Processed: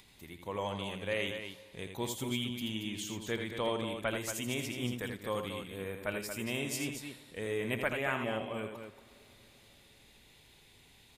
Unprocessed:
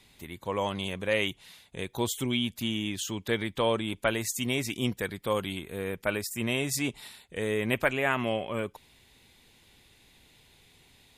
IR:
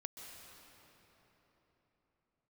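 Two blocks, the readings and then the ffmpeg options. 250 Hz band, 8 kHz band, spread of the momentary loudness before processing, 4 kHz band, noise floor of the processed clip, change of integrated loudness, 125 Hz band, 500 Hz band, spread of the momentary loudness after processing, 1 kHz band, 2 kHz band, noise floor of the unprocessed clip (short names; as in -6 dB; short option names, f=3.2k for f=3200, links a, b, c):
-6.0 dB, -6.0 dB, 9 LU, -6.0 dB, -61 dBFS, -6.0 dB, -6.0 dB, -6.0 dB, 10 LU, -6.0 dB, -6.0 dB, -61 dBFS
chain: -filter_complex "[0:a]acompressor=mode=upward:threshold=-47dB:ratio=2.5,aecho=1:1:81.63|230.3:0.447|0.398,asplit=2[a][b];[1:a]atrim=start_sample=2205,adelay=49[c];[b][c]afir=irnorm=-1:irlink=0,volume=-14dB[d];[a][d]amix=inputs=2:normalize=0,volume=-7.5dB"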